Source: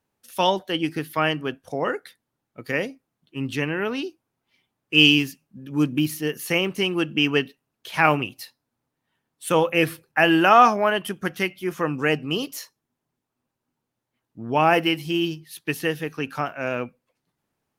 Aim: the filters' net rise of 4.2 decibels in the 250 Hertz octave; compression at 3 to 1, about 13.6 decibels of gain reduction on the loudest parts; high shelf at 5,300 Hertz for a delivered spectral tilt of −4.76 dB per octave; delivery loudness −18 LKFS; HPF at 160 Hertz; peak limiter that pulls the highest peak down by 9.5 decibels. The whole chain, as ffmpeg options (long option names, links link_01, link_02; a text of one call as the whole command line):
ffmpeg -i in.wav -af "highpass=160,equalizer=frequency=250:width_type=o:gain=6.5,highshelf=frequency=5300:gain=-3.5,acompressor=threshold=-28dB:ratio=3,volume=15dB,alimiter=limit=-6.5dB:level=0:latency=1" out.wav